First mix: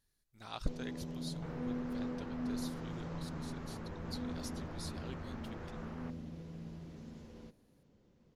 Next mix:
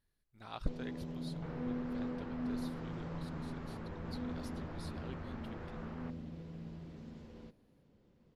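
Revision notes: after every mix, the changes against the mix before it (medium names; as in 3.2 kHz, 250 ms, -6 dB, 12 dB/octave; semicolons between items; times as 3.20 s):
speech: add treble shelf 4.1 kHz -8 dB; master: add peaking EQ 6.4 kHz -7 dB 0.64 oct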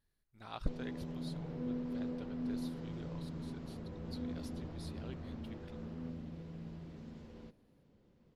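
second sound -12.0 dB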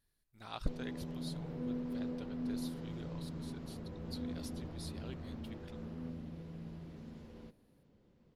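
speech: add treble shelf 4.1 kHz +8 dB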